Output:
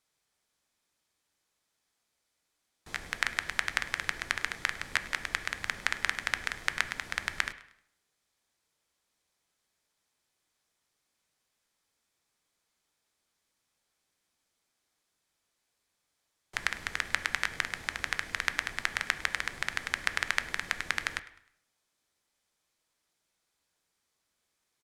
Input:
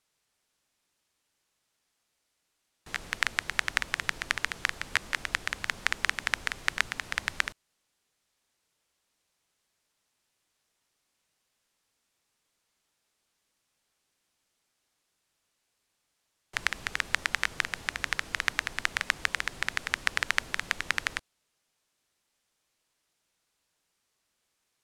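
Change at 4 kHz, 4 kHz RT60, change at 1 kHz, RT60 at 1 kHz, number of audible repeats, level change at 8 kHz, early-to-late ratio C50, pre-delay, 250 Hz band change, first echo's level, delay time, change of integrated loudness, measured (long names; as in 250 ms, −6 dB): −2.5 dB, 0.60 s, −1.5 dB, 0.70 s, 2, −2.0 dB, 14.0 dB, 7 ms, −1.5 dB, −20.5 dB, 103 ms, −2.0 dB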